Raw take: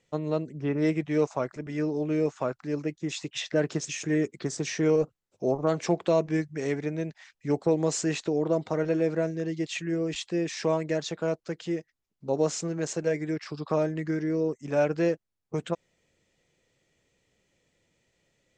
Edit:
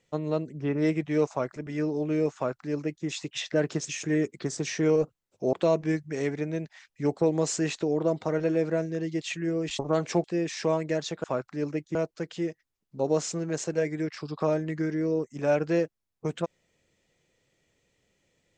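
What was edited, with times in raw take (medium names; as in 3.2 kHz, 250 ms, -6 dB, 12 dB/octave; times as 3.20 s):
2.35–3.06 s: copy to 11.24 s
5.53–5.98 s: move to 10.24 s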